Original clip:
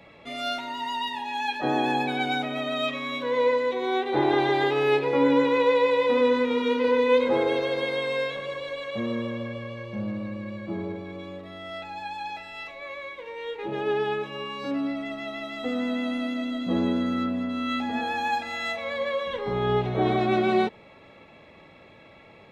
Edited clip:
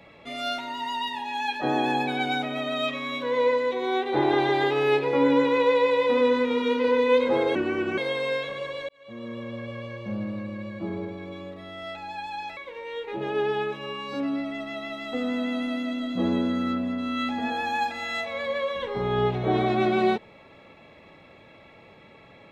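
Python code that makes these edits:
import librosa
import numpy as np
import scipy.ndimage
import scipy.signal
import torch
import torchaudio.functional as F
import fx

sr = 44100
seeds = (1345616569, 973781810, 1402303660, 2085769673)

y = fx.edit(x, sr, fx.speed_span(start_s=7.55, length_s=0.3, speed=0.7),
    fx.fade_in_span(start_s=8.76, length_s=0.91),
    fx.cut(start_s=12.44, length_s=0.64), tone=tone)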